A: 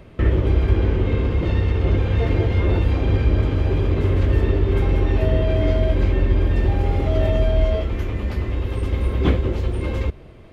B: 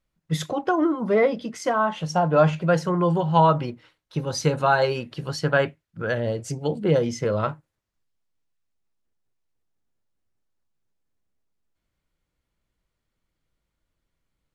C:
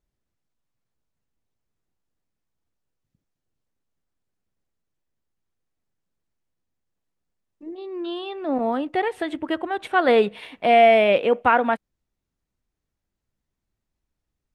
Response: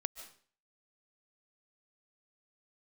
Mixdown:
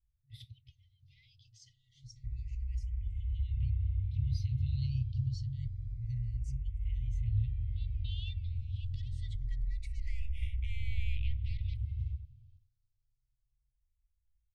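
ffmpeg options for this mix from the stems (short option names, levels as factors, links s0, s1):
-filter_complex "[0:a]acompressor=threshold=0.1:ratio=6,adelay=2050,volume=0.376,asplit=2[s0][s1];[s1]volume=0.335[s2];[1:a]lowshelf=f=330:t=q:w=1.5:g=8,volume=0.531[s3];[2:a]alimiter=limit=0.299:level=0:latency=1,dynaudnorm=f=340:g=11:m=2.82,aeval=exprs='0.841*(cos(1*acos(clip(val(0)/0.841,-1,1)))-cos(1*PI/2))+0.0596*(cos(6*acos(clip(val(0)/0.841,-1,1)))-cos(6*PI/2))':c=same,volume=0.75,asplit=2[s4][s5];[s5]volume=0.158[s6];[s3][s4]amix=inputs=2:normalize=0,equalizer=f=4100:w=0.88:g=8,alimiter=limit=0.188:level=0:latency=1:release=80,volume=1[s7];[3:a]atrim=start_sample=2205[s8];[s6][s8]afir=irnorm=-1:irlink=0[s9];[s2]aecho=0:1:95:1[s10];[s0][s7][s9][s10]amix=inputs=4:normalize=0,afftfilt=real='re*(1-between(b*sr/4096,130,1900))':imag='im*(1-between(b*sr/4096,130,1900))':win_size=4096:overlap=0.75,firequalizer=gain_entry='entry(110,0);entry(240,5);entry(670,-6);entry(1300,-23);entry(3400,-20)':delay=0.05:min_phase=1,asplit=2[s11][s12];[s12]afreqshift=0.27[s13];[s11][s13]amix=inputs=2:normalize=1"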